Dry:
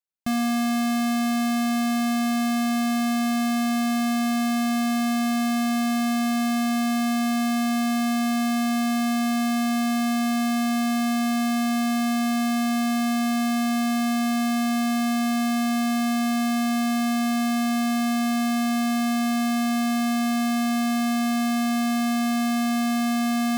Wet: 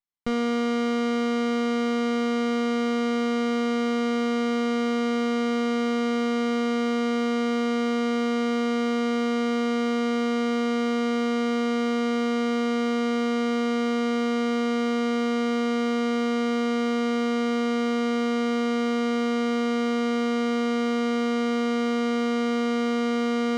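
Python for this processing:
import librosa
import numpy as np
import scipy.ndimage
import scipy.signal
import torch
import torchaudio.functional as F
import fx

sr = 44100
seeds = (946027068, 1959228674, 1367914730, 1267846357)

y = fx.lower_of_two(x, sr, delay_ms=0.95)
y = fx.air_absorb(y, sr, metres=120.0)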